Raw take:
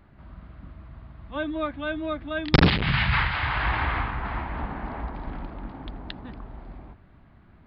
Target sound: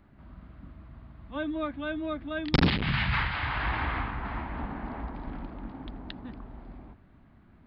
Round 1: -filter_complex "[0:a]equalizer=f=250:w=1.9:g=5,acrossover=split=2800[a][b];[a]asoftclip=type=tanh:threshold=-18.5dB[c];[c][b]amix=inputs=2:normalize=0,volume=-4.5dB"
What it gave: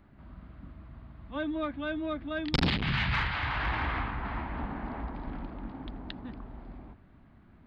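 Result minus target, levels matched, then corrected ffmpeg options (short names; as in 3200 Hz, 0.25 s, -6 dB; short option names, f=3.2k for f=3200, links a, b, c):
soft clip: distortion +8 dB
-filter_complex "[0:a]equalizer=f=250:w=1.9:g=5,acrossover=split=2800[a][b];[a]asoftclip=type=tanh:threshold=-10.5dB[c];[c][b]amix=inputs=2:normalize=0,volume=-4.5dB"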